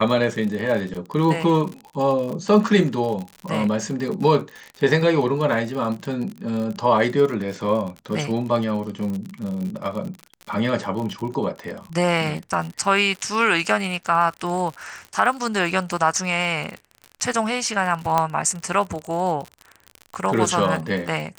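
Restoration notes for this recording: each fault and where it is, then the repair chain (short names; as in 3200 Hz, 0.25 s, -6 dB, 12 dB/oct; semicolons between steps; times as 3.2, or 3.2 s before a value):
crackle 56/s -28 dBFS
18.18 pop -6 dBFS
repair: de-click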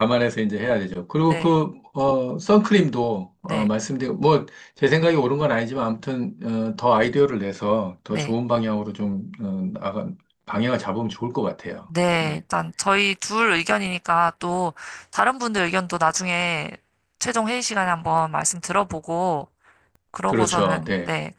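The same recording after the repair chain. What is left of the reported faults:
18.18 pop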